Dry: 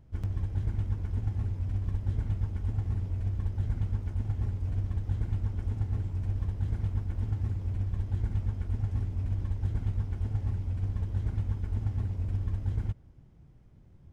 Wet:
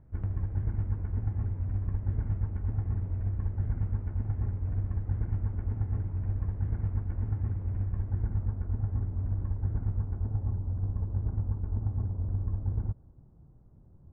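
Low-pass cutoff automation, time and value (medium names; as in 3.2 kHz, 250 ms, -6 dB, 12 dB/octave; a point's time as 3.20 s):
low-pass 24 dB/octave
7.87 s 1.9 kHz
8.54 s 1.5 kHz
9.83 s 1.5 kHz
10.49 s 1.2 kHz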